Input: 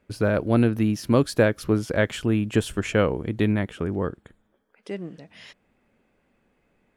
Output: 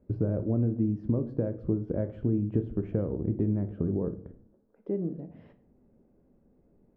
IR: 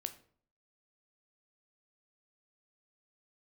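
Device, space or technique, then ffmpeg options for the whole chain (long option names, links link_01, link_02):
television next door: -filter_complex "[0:a]acompressor=threshold=-30dB:ratio=5,lowpass=430[link_01];[1:a]atrim=start_sample=2205[link_02];[link_01][link_02]afir=irnorm=-1:irlink=0,volume=7.5dB"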